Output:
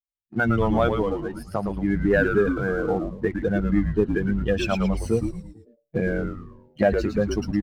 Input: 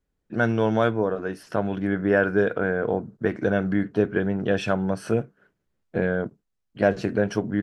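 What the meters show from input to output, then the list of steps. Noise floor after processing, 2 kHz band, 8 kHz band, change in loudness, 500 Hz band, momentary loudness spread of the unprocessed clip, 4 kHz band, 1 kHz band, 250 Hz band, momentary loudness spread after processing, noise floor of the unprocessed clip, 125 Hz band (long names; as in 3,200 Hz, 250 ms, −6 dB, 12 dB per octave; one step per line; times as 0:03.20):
−79 dBFS, −0.5 dB, can't be measured, +0.5 dB, −0.5 dB, 7 LU, +1.5 dB, +0.5 dB, +1.5 dB, 10 LU, −77 dBFS, +2.0 dB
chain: spectral dynamics exaggerated over time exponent 2
camcorder AGC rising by 11 dB per second
mains-hum notches 60/120/180/240 Hz
leveller curve on the samples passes 1
echo with shifted repeats 111 ms, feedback 43%, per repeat −140 Hz, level −5.5 dB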